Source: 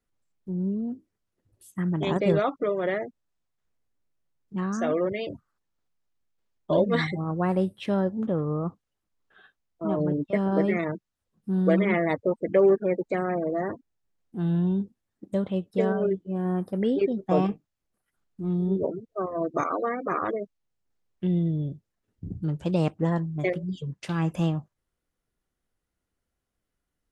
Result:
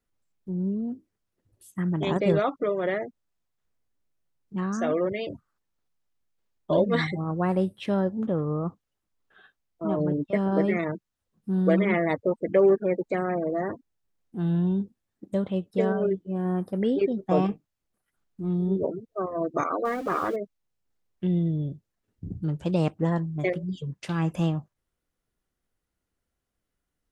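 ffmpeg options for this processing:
ffmpeg -i in.wav -filter_complex "[0:a]asettb=1/sr,asplit=3[link_01][link_02][link_03];[link_01]atrim=end=19.854[link_04];[link_02]atrim=start=19.85:end=20.36,asetpts=PTS-STARTPTS,afade=type=in:duration=0.004:curve=qsin,afade=type=out:start_time=0.506:duration=0.004:curve=qsin,aeval=exprs='val(0)+0.5*0.0106*sgn(val(0))':channel_layout=same[link_05];[link_03]atrim=start=20.356[link_06];[link_04][link_05]acrossfade=duration=0.004:curve1=hsin:curve2=qsin[link_07];[link_07][link_06]acrossfade=duration=0.004:curve1=qsin:curve2=hsin" out.wav

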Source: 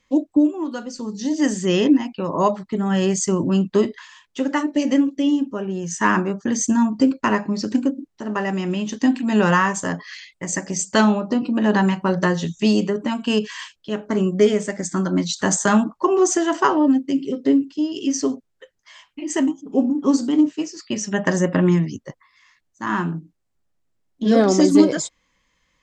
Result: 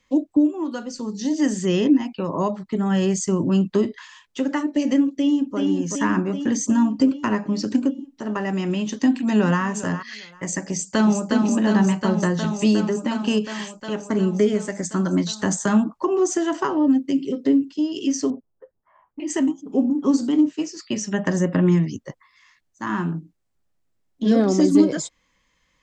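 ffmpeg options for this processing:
ffmpeg -i in.wav -filter_complex "[0:a]asplit=2[link_01][link_02];[link_02]afade=type=in:start_time=5.12:duration=0.01,afade=type=out:start_time=5.57:duration=0.01,aecho=0:1:380|760|1140|1520|1900|2280|2660|3040|3420|3800:0.707946|0.460165|0.299107|0.19442|0.126373|0.0821423|0.0533925|0.0347051|0.0225583|0.0146629[link_03];[link_01][link_03]amix=inputs=2:normalize=0,asplit=2[link_04][link_05];[link_05]afade=type=in:start_time=8.87:duration=0.01,afade=type=out:start_time=9.62:duration=0.01,aecho=0:1:400|800:0.16788|0.0251821[link_06];[link_04][link_06]amix=inputs=2:normalize=0,asplit=2[link_07][link_08];[link_08]afade=type=in:start_time=10.62:duration=0.01,afade=type=out:start_time=11.27:duration=0.01,aecho=0:1:360|720|1080|1440|1800|2160|2520|2880|3240|3600|3960|4320:0.562341|0.449873|0.359898|0.287919|0.230335|0.184268|0.147414|0.117932|0.0943452|0.0754762|0.0603809|0.0483048[link_09];[link_07][link_09]amix=inputs=2:normalize=0,asettb=1/sr,asplit=3[link_10][link_11][link_12];[link_10]atrim=end=18.304[link_13];[link_11]atrim=start=18.3:end=19.2,asetpts=PTS-STARTPTS,afade=type=in:duration=0.004:curve=qsin,afade=type=out:start_time=0.896:duration=0.004:curve=qsin,lowpass=frequency=1100:width=0.5412,lowpass=frequency=1100:width=1.3066[link_14];[link_12]atrim=start=19.196[link_15];[link_13][link_14]acrossfade=duration=0.004:curve1=hsin:curve2=qsin[link_16];[link_16][link_15]acrossfade=duration=0.004:curve1=qsin:curve2=hsin,acrossover=split=350[link_17][link_18];[link_18]acompressor=threshold=-28dB:ratio=2[link_19];[link_17][link_19]amix=inputs=2:normalize=0" out.wav

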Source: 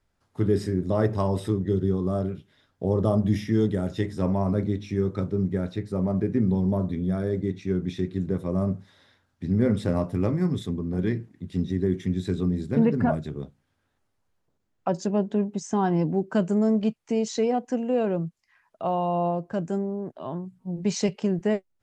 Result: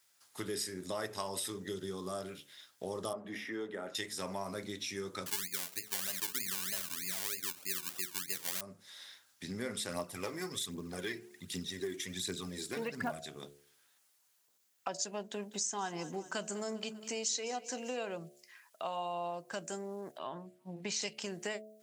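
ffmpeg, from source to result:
ffmpeg -i in.wav -filter_complex "[0:a]asettb=1/sr,asplit=3[link_01][link_02][link_03];[link_01]atrim=end=3.134[link_04];[link_02]atrim=start=3.13:end=3.95,asetpts=PTS-STARTPTS,afade=type=in:duration=0.004:curve=qsin,afade=type=out:start_time=0.816:duration=0.004:curve=qsin,acrossover=split=230 2200:gain=0.178 1 0.0631[link_05][link_06][link_07];[link_05][link_06][link_07]amix=inputs=3:normalize=0[link_08];[link_03]atrim=start=3.946[link_09];[link_04][link_08]acrossfade=duration=0.004:curve1=hsin:curve2=qsin[link_10];[link_10][link_09]acrossfade=duration=0.004:curve1=qsin:curve2=hsin,asettb=1/sr,asplit=3[link_11][link_12][link_13];[link_11]atrim=end=5.264[link_14];[link_12]atrim=start=5.26:end=8.61,asetpts=PTS-STARTPTS,afade=type=in:duration=0.004:curve=qsin,afade=type=out:start_time=3.346:duration=0.004:curve=qsin,acrusher=samples=27:mix=1:aa=0.000001:lfo=1:lforange=16.2:lforate=3.2[link_15];[link_13]atrim=start=8.606[link_16];[link_14][link_15]acrossfade=duration=0.004:curve1=hsin:curve2=qsin[link_17];[link_17][link_16]acrossfade=duration=0.004:curve1=qsin:curve2=hsin,asplit=3[link_18][link_19][link_20];[link_18]afade=type=out:start_time=9.89:duration=0.02[link_21];[link_19]aphaser=in_gain=1:out_gain=1:delay=3.2:decay=0.51:speed=1.3:type=triangular,afade=type=in:start_time=9.89:duration=0.02,afade=type=out:start_time=13.23:duration=0.02[link_22];[link_20]afade=type=in:start_time=13.23:duration=0.02[link_23];[link_21][link_22][link_23]amix=inputs=3:normalize=0,asettb=1/sr,asplit=3[link_24][link_25][link_26];[link_24]atrim=end=15.264[link_27];[link_25]atrim=start=15.26:end=17.97,asetpts=PTS-STARTPTS,afade=type=in:duration=0.004:curve=qsin,afade=type=out:start_time=2.706:duration=0.004:curve=qsin,aecho=1:1:198|396|594|792|990:0.112|0.0628|0.0352|0.0197|0.011,atrim=end_sample=119511[link_28];[link_26]atrim=start=17.966[link_29];[link_27][link_28]acrossfade=duration=0.004:curve1=hsin:curve2=qsin[link_30];[link_30][link_29]acrossfade=duration=0.004:curve1=qsin:curve2=hsin,asettb=1/sr,asplit=3[link_31][link_32][link_33];[link_31]atrim=end=20.184[link_34];[link_32]atrim=start=20.18:end=21.02,asetpts=PTS-STARTPTS,afade=type=in:duration=0.004:curve=qsin,afade=type=out:start_time=0.836:duration=0.004:curve=qsin,bass=frequency=250:gain=1,treble=frequency=4000:gain=-12[link_35];[link_33]atrim=start=21.016[link_36];[link_34][link_35]acrossfade=duration=0.004:curve1=hsin:curve2=qsin[link_37];[link_37][link_36]acrossfade=duration=0.004:curve1=qsin:curve2=hsin,aderivative,bandreject=frequency=71.79:width_type=h:width=4,bandreject=frequency=143.58:width_type=h:width=4,bandreject=frequency=215.37:width_type=h:width=4,bandreject=frequency=287.16:width_type=h:width=4,bandreject=frequency=358.95:width_type=h:width=4,bandreject=frequency=430.74:width_type=h:width=4,bandreject=frequency=502.53:width_type=h:width=4,bandreject=frequency=574.32:width_type=h:width=4,bandreject=frequency=646.11:width_type=h:width=4,bandreject=frequency=717.9:width_type=h:width=4,acompressor=threshold=-55dB:ratio=2.5,volume=16.5dB" out.wav

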